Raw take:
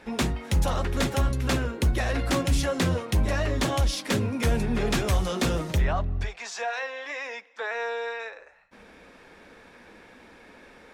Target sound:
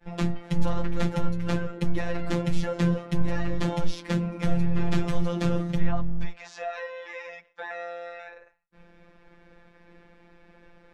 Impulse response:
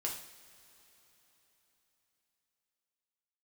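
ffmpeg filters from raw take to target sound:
-af "agate=range=-33dB:threshold=-47dB:ratio=3:detection=peak,aemphasis=mode=reproduction:type=bsi,afftfilt=real='hypot(re,im)*cos(PI*b)':imag='0':win_size=1024:overlap=0.75,volume=-1dB"

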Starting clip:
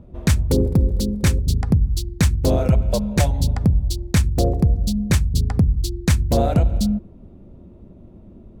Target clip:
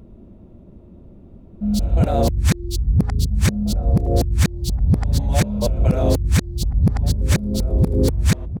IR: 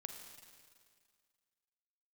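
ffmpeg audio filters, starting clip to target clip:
-filter_complex "[0:a]areverse,asplit=2[link_01][link_02];[link_02]adelay=1691,volume=-12dB,highshelf=frequency=4000:gain=-38[link_03];[link_01][link_03]amix=inputs=2:normalize=0"

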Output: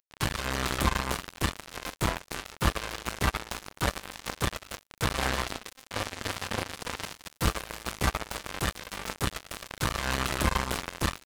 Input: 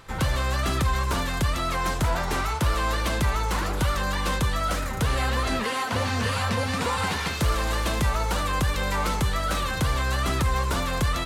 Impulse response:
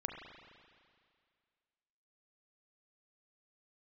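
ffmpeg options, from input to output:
-filter_complex "[0:a]acompressor=mode=upward:threshold=-29dB:ratio=2.5,asplit=2[link_01][link_02];[link_02]adelay=30,volume=-10.5dB[link_03];[link_01][link_03]amix=inputs=2:normalize=0,acrusher=bits=2:mix=0:aa=0.5"

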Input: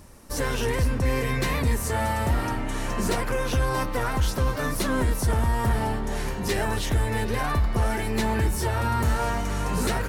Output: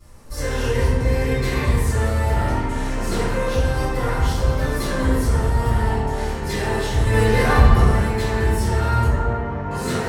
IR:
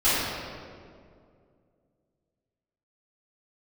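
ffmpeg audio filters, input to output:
-filter_complex "[0:a]asettb=1/sr,asplit=3[link_01][link_02][link_03];[link_01]atrim=end=7.054[link_04];[link_02]atrim=start=7.05:end=7.8,asetpts=PTS-STARTPTS,afade=type=in:duration=0.004:curve=qsin,afade=type=out:start_time=0.746:duration=0.004:curve=qsin,acontrast=76[link_05];[link_03]atrim=start=7.796[link_06];[link_04][link_05]acrossfade=duration=0.004:curve1=hsin:curve2=qsin[link_07];[link_07][link_06]acrossfade=duration=0.004:curve1=qsin:curve2=hsin,asettb=1/sr,asplit=3[link_08][link_09][link_10];[link_08]atrim=end=9.044[link_11];[link_09]atrim=start=9.04:end=9.71,asetpts=PTS-STARTPTS,afade=type=in:duration=0.004:curve=qsin,afade=type=out:start_time=0.666:duration=0.004:curve=qsin,lowpass=1400[link_12];[link_10]atrim=start=9.706[link_13];[link_11][link_12]acrossfade=duration=0.004:curve1=hsin:curve2=qsin[link_14];[link_14][link_13]acrossfade=duration=0.004:curve1=qsin:curve2=hsin[link_15];[1:a]atrim=start_sample=2205,asetrate=70560,aresample=44100[link_16];[link_15][link_16]afir=irnorm=-1:irlink=0,volume=-11dB"

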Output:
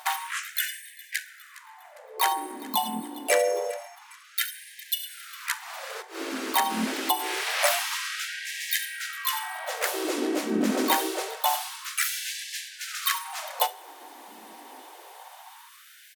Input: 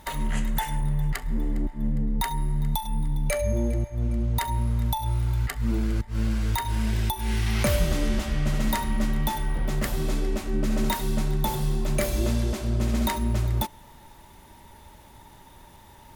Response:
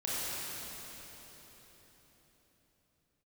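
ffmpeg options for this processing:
-filter_complex "[0:a]asplit=3[link_01][link_02][link_03];[link_02]asetrate=37084,aresample=44100,atempo=1.18921,volume=-1dB[link_04];[link_03]asetrate=52444,aresample=44100,atempo=0.840896,volume=-7dB[link_05];[link_01][link_04][link_05]amix=inputs=3:normalize=0,asplit=2[link_06][link_07];[1:a]atrim=start_sample=2205,atrim=end_sample=3528[link_08];[link_07][link_08]afir=irnorm=-1:irlink=0,volume=-14dB[link_09];[link_06][link_09]amix=inputs=2:normalize=0,afftfilt=real='re*gte(b*sr/1024,210*pow(1600/210,0.5+0.5*sin(2*PI*0.26*pts/sr)))':imag='im*gte(b*sr/1024,210*pow(1600/210,0.5+0.5*sin(2*PI*0.26*pts/sr)))':win_size=1024:overlap=0.75,volume=2dB"

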